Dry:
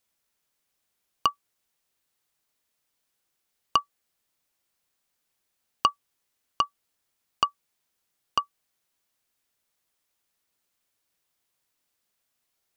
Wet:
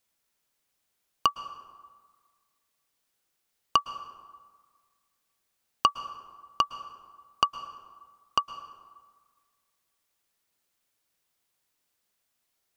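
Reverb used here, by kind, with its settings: plate-style reverb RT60 1.6 s, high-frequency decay 0.55×, pre-delay 100 ms, DRR 13 dB

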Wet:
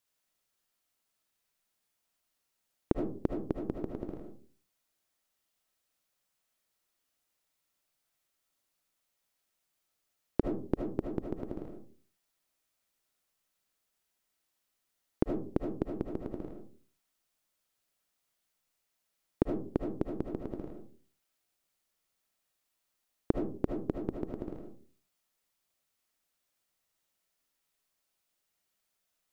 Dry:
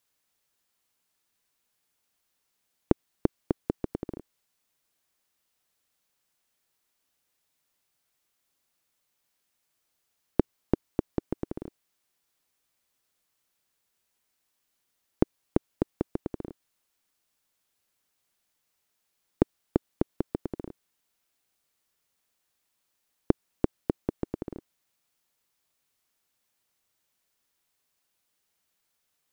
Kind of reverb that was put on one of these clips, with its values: algorithmic reverb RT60 0.42 s, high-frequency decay 0.35×, pre-delay 35 ms, DRR 2 dB; trim -5.5 dB

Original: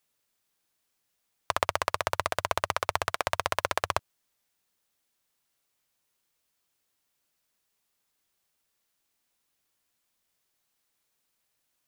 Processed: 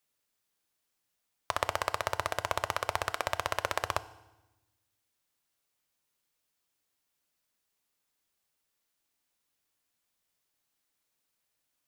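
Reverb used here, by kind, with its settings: FDN reverb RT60 1 s, low-frequency decay 1.5×, high-frequency decay 0.95×, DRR 14 dB; trim -3.5 dB

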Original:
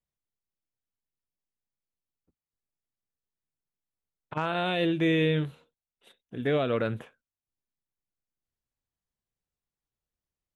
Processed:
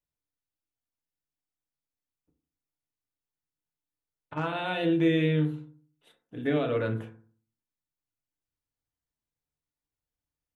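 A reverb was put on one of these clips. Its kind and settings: FDN reverb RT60 0.46 s, low-frequency decay 1.3×, high-frequency decay 0.4×, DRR 2.5 dB; trim -4 dB

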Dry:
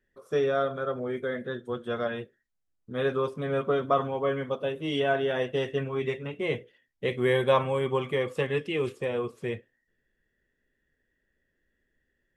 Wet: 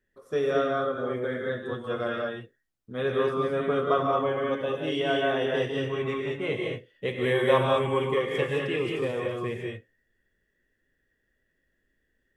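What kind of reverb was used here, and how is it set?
gated-style reverb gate 240 ms rising, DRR -1 dB; trim -1.5 dB

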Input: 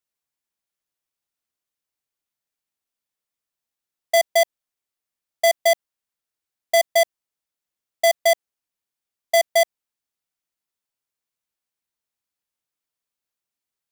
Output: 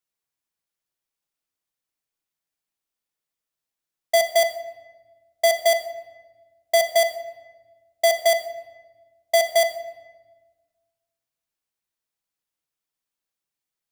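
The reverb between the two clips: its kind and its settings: simulated room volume 840 m³, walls mixed, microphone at 0.64 m; trim -1 dB

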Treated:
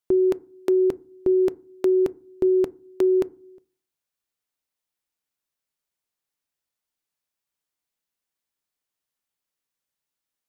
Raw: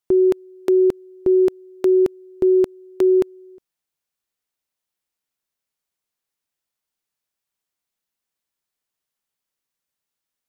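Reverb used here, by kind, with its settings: FDN reverb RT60 0.39 s, low-frequency decay 1.55×, high-frequency decay 0.35×, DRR 18 dB; trim -2.5 dB

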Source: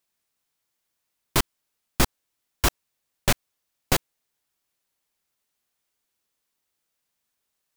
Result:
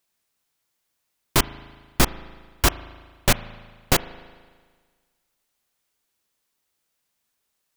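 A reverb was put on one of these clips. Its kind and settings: spring tank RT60 1.6 s, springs 37 ms, chirp 50 ms, DRR 15.5 dB; trim +3 dB

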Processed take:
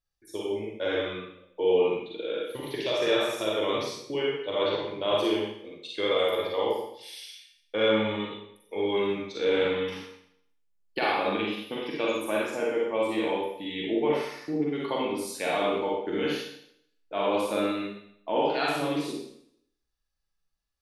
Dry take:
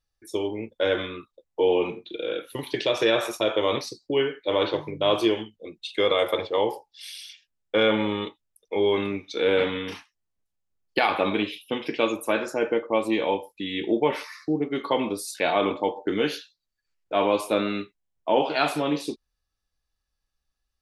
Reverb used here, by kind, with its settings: Schroeder reverb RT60 0.69 s, DRR -3.5 dB; trim -8 dB

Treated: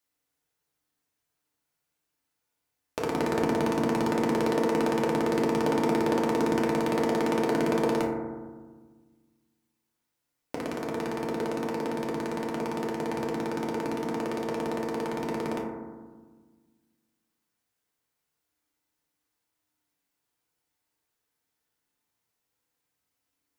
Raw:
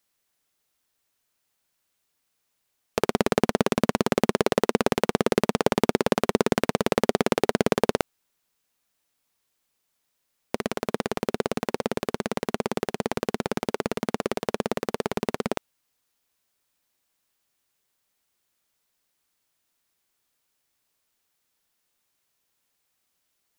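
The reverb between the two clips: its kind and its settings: FDN reverb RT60 1.4 s, low-frequency decay 1.45×, high-frequency decay 0.25×, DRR -3.5 dB; trim -9 dB

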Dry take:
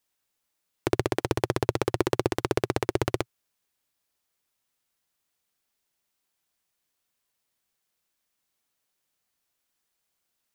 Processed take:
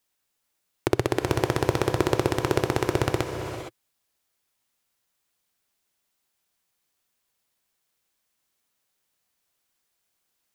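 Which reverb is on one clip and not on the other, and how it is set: gated-style reverb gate 490 ms rising, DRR 6 dB; trim +2 dB

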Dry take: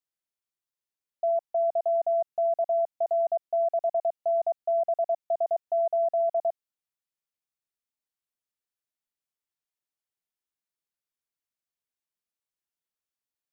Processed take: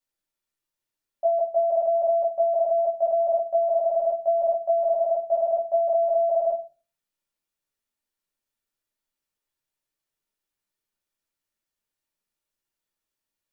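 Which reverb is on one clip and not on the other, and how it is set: simulated room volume 130 m³, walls furnished, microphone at 2.4 m

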